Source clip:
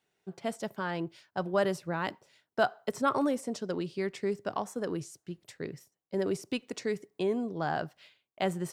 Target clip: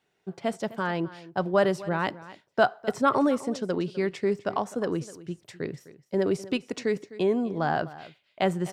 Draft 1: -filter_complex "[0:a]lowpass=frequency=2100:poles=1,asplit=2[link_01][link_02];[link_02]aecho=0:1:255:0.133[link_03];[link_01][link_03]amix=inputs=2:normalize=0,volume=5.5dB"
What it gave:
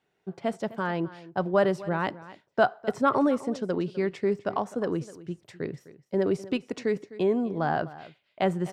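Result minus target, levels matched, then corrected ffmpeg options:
4,000 Hz band −3.5 dB
-filter_complex "[0:a]lowpass=frequency=4700:poles=1,asplit=2[link_01][link_02];[link_02]aecho=0:1:255:0.133[link_03];[link_01][link_03]amix=inputs=2:normalize=0,volume=5.5dB"

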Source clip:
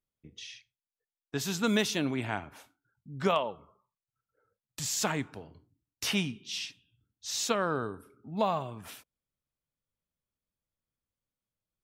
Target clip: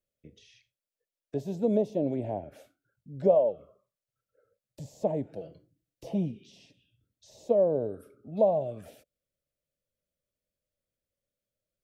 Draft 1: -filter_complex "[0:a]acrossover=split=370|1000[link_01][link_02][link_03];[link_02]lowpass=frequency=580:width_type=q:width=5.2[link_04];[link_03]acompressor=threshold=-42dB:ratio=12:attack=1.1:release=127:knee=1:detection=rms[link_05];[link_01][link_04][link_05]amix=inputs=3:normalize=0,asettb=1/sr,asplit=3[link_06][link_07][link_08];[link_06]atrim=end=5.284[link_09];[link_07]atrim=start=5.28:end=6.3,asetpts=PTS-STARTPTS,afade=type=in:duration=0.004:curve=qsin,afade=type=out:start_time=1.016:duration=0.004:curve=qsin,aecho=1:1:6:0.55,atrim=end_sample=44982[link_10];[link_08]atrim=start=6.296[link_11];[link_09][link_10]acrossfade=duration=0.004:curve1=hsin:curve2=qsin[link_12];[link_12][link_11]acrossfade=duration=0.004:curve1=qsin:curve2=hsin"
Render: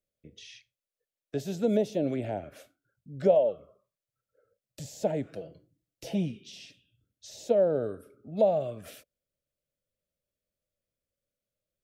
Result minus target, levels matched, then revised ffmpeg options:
downward compressor: peak gain reduction −10.5 dB
-filter_complex "[0:a]acrossover=split=370|1000[link_01][link_02][link_03];[link_02]lowpass=frequency=580:width_type=q:width=5.2[link_04];[link_03]acompressor=threshold=-53.5dB:ratio=12:attack=1.1:release=127:knee=1:detection=rms[link_05];[link_01][link_04][link_05]amix=inputs=3:normalize=0,asettb=1/sr,asplit=3[link_06][link_07][link_08];[link_06]atrim=end=5.284[link_09];[link_07]atrim=start=5.28:end=6.3,asetpts=PTS-STARTPTS,afade=type=in:duration=0.004:curve=qsin,afade=type=out:start_time=1.016:duration=0.004:curve=qsin,aecho=1:1:6:0.55,atrim=end_sample=44982[link_10];[link_08]atrim=start=6.296[link_11];[link_09][link_10]acrossfade=duration=0.004:curve1=hsin:curve2=qsin[link_12];[link_12][link_11]acrossfade=duration=0.004:curve1=qsin:curve2=hsin"

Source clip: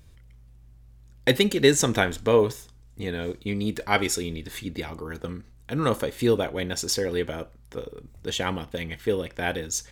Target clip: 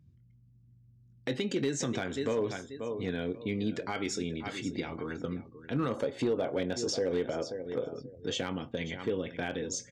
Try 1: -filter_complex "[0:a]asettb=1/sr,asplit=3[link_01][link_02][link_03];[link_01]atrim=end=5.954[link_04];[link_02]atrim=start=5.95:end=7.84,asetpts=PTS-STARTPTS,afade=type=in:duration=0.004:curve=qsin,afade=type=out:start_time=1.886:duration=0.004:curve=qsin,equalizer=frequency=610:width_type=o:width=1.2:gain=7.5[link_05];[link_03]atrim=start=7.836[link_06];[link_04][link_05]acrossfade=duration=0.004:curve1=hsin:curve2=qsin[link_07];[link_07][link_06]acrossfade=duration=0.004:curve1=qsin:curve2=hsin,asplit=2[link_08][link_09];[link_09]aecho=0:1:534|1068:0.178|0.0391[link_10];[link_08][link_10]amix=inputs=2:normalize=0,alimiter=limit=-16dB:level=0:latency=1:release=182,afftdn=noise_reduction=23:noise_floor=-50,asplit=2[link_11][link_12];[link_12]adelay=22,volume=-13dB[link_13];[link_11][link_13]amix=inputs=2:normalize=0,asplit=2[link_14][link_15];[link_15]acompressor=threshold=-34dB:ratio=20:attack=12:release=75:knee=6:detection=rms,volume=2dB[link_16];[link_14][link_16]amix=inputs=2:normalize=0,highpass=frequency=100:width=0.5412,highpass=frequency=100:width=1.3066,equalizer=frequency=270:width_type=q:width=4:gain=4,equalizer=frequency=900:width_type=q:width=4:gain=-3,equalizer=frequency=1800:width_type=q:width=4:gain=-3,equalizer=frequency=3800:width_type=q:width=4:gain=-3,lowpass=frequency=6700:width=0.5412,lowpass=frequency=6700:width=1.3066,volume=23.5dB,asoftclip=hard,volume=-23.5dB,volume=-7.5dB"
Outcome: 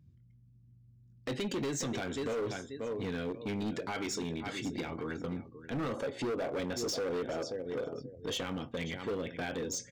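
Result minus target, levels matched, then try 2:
gain into a clipping stage and back: distortion +16 dB
-filter_complex "[0:a]asettb=1/sr,asplit=3[link_01][link_02][link_03];[link_01]atrim=end=5.954[link_04];[link_02]atrim=start=5.95:end=7.84,asetpts=PTS-STARTPTS,afade=type=in:duration=0.004:curve=qsin,afade=type=out:start_time=1.886:duration=0.004:curve=qsin,equalizer=frequency=610:width_type=o:width=1.2:gain=7.5[link_05];[link_03]atrim=start=7.836[link_06];[link_04][link_05]acrossfade=duration=0.004:curve1=hsin:curve2=qsin[link_07];[link_07][link_06]acrossfade=duration=0.004:curve1=qsin:curve2=hsin,asplit=2[link_08][link_09];[link_09]aecho=0:1:534|1068:0.178|0.0391[link_10];[link_08][link_10]amix=inputs=2:normalize=0,alimiter=limit=-16dB:level=0:latency=1:release=182,afftdn=noise_reduction=23:noise_floor=-50,asplit=2[link_11][link_12];[link_12]adelay=22,volume=-13dB[link_13];[link_11][link_13]amix=inputs=2:normalize=0,asplit=2[link_14][link_15];[link_15]acompressor=threshold=-34dB:ratio=20:attack=12:release=75:knee=6:detection=rms,volume=2dB[link_16];[link_14][link_16]amix=inputs=2:normalize=0,highpass=frequency=100:width=0.5412,highpass=frequency=100:width=1.3066,equalizer=frequency=270:width_type=q:width=4:gain=4,equalizer=frequency=900:width_type=q:width=4:gain=-3,equalizer=frequency=1800:width_type=q:width=4:gain=-3,equalizer=frequency=3800:width_type=q:width=4:gain=-3,lowpass=frequency=6700:width=0.5412,lowpass=frequency=6700:width=1.3066,volume=15dB,asoftclip=hard,volume=-15dB,volume=-7.5dB"

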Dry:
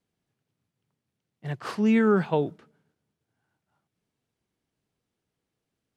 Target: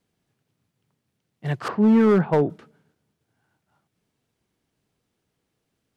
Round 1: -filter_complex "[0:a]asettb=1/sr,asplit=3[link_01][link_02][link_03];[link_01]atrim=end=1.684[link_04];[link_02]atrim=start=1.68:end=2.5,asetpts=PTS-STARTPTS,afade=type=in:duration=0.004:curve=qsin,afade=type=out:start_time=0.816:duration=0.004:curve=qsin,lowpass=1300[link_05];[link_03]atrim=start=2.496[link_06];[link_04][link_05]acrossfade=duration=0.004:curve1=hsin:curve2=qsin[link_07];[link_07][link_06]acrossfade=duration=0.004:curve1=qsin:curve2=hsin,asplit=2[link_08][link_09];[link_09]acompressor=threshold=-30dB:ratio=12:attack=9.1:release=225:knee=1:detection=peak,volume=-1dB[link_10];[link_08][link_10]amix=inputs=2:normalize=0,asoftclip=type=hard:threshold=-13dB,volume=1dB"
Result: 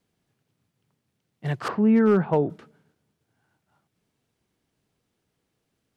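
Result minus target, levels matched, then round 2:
downward compressor: peak gain reduction +10.5 dB
-filter_complex "[0:a]asettb=1/sr,asplit=3[link_01][link_02][link_03];[link_01]atrim=end=1.684[link_04];[link_02]atrim=start=1.68:end=2.5,asetpts=PTS-STARTPTS,afade=type=in:duration=0.004:curve=qsin,afade=type=out:start_time=0.816:duration=0.004:curve=qsin,lowpass=1300[link_05];[link_03]atrim=start=2.496[link_06];[link_04][link_05]acrossfade=duration=0.004:curve1=hsin:curve2=qsin[link_07];[link_07][link_06]acrossfade=duration=0.004:curve1=qsin:curve2=hsin,asplit=2[link_08][link_09];[link_09]acompressor=threshold=-18.5dB:ratio=12:attack=9.1:release=225:knee=1:detection=peak,volume=-1dB[link_10];[link_08][link_10]amix=inputs=2:normalize=0,asoftclip=type=hard:threshold=-13dB,volume=1dB"

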